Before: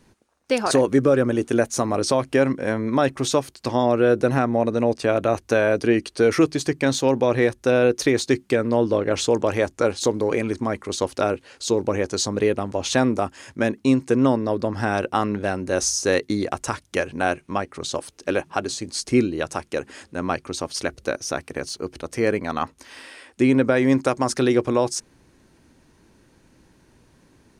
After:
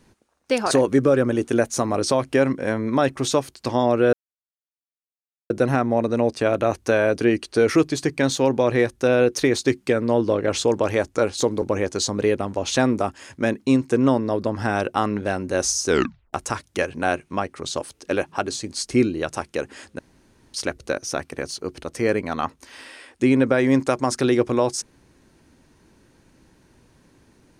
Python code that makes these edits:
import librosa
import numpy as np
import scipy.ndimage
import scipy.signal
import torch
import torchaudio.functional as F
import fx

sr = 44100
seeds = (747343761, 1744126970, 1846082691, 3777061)

y = fx.edit(x, sr, fx.insert_silence(at_s=4.13, length_s=1.37),
    fx.cut(start_s=10.25, length_s=1.55),
    fx.tape_stop(start_s=16.05, length_s=0.46),
    fx.room_tone_fill(start_s=20.17, length_s=0.55), tone=tone)